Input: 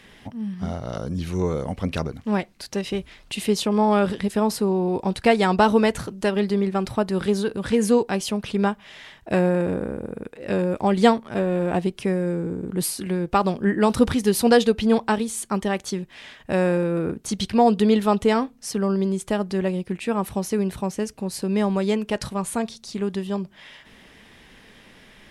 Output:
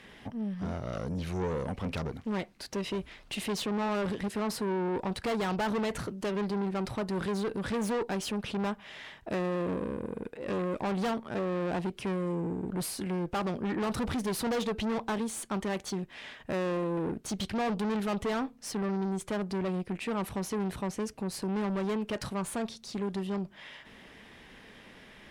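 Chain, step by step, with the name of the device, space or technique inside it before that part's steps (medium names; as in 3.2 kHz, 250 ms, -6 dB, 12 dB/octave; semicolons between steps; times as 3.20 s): tube preamp driven hard (valve stage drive 27 dB, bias 0.3; bass shelf 190 Hz -4 dB; treble shelf 3.6 kHz -6.5 dB)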